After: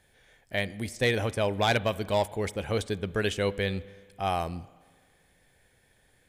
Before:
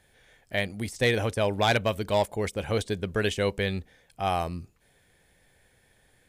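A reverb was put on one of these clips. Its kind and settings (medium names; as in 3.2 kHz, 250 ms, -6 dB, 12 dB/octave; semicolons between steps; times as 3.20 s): spring tank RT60 1.6 s, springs 30/52 ms, chirp 25 ms, DRR 18.5 dB; trim -1.5 dB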